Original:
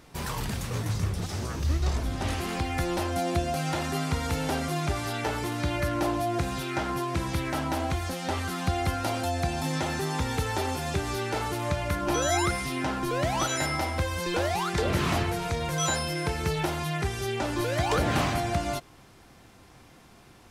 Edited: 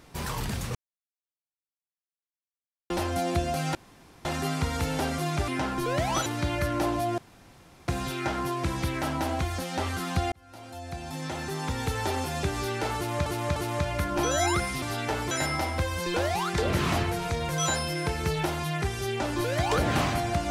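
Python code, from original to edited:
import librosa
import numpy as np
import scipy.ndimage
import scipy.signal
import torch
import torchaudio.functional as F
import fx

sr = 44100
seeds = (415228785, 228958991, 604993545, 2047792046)

y = fx.edit(x, sr, fx.silence(start_s=0.75, length_s=2.15),
    fx.insert_room_tone(at_s=3.75, length_s=0.5),
    fx.swap(start_s=4.98, length_s=0.49, other_s=12.73, other_length_s=0.78),
    fx.insert_room_tone(at_s=6.39, length_s=0.7),
    fx.fade_in_span(start_s=8.83, length_s=1.76),
    fx.repeat(start_s=11.47, length_s=0.3, count=3), tone=tone)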